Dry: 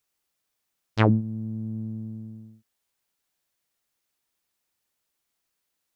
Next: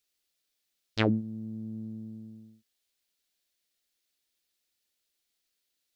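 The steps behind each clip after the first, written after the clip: ten-band EQ 125 Hz -9 dB, 1000 Hz -9 dB, 4000 Hz +6 dB; gain -2 dB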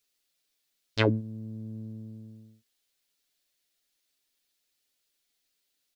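comb 7.2 ms, depth 53%; gain +1.5 dB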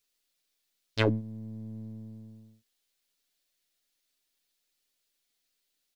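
half-wave gain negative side -3 dB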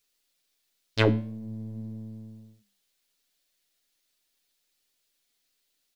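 flange 0.47 Hz, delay 8.4 ms, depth 7.5 ms, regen -80%; gain +8 dB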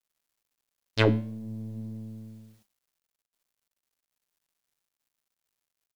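bit-crush 11-bit

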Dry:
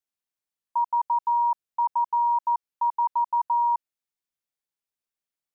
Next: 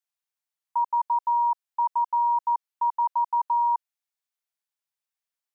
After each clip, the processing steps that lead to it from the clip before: HPF 640 Hz 24 dB/oct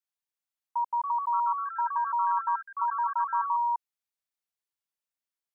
echoes that change speed 0.402 s, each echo +3 st, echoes 3, each echo -6 dB; gain -4.5 dB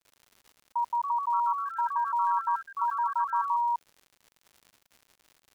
crackle 160/s -44 dBFS

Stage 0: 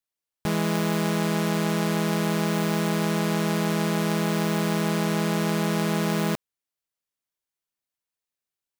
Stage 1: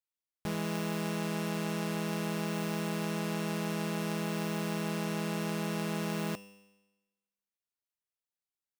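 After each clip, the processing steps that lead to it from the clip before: resonator 100 Hz, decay 1.1 s, harmonics all, mix 70%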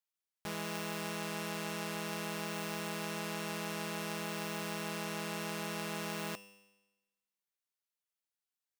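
low shelf 450 Hz -10.5 dB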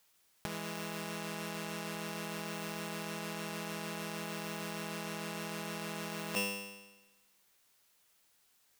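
negative-ratio compressor -47 dBFS, ratio -0.5; gain +10.5 dB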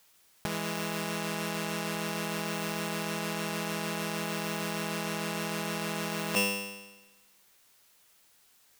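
overloaded stage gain 25.5 dB; gain +7 dB

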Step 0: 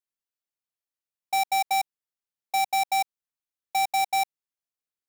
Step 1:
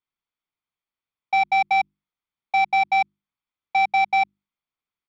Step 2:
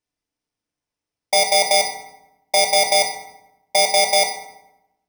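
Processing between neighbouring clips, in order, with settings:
LPF 3700 Hz 24 dB/oct; notches 50/100/150/200/250/300/350 Hz; comb 0.9 ms, depth 41%; gain +5.5 dB
FFT order left unsorted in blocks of 32 samples; FDN reverb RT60 0.91 s, low-frequency decay 1.35×, high-frequency decay 0.65×, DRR 2.5 dB; careless resampling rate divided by 3×, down filtered, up hold; gain +8.5 dB

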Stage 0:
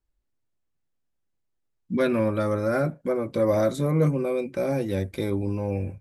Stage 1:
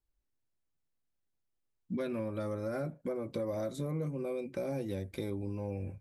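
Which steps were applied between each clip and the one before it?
dynamic EQ 1500 Hz, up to -4 dB, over -43 dBFS, Q 1.2; compressor, threshold -27 dBFS, peak gain reduction 10.5 dB; gain -5.5 dB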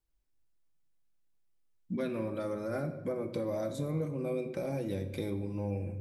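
shoebox room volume 940 m³, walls mixed, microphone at 0.61 m; gain +1 dB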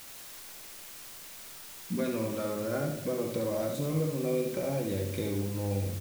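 in parallel at -11.5 dB: requantised 6-bit, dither triangular; on the sum: echo 71 ms -5.5 dB

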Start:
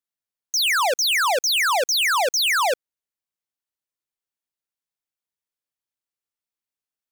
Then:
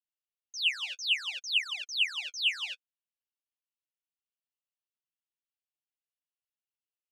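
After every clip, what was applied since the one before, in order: ladder band-pass 3000 Hz, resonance 75%; flange 0.61 Hz, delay 2.6 ms, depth 9.9 ms, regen -22%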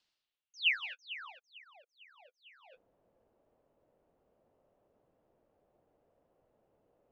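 reverse; upward compressor, threshold -29 dBFS; reverse; low-pass sweep 4500 Hz -> 570 Hz, 0.15–1.78; gain -5 dB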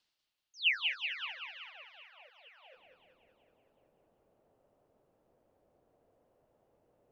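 warbling echo 0.189 s, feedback 61%, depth 93 cents, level -5 dB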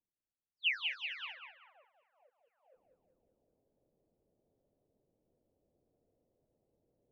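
low-pass opened by the level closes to 400 Hz, open at -33.5 dBFS; gain -3.5 dB

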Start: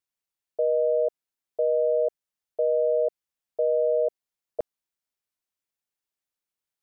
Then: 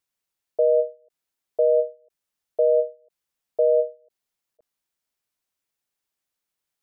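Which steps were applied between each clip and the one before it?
ending taper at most 220 dB/s; gain +5 dB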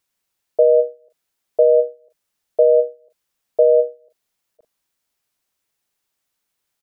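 doubler 41 ms -10.5 dB; gain +7 dB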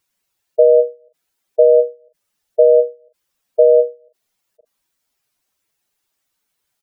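spectral contrast raised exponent 1.8; gain +3 dB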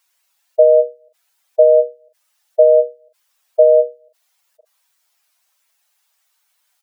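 HPF 660 Hz 24 dB/oct; gain +7.5 dB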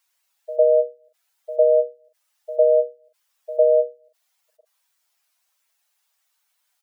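reverse echo 0.104 s -16.5 dB; gain -5.5 dB

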